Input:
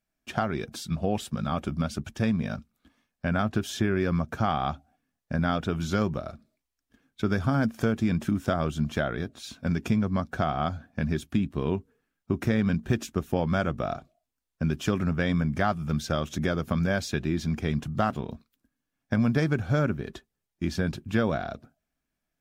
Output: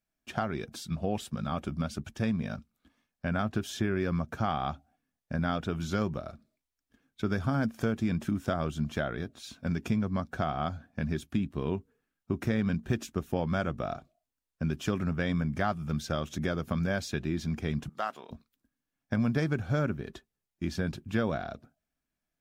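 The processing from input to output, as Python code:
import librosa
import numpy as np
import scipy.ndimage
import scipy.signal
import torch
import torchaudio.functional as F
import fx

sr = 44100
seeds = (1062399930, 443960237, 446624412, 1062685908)

y = fx.bessel_highpass(x, sr, hz=720.0, order=2, at=(17.89, 18.31))
y = y * 10.0 ** (-4.0 / 20.0)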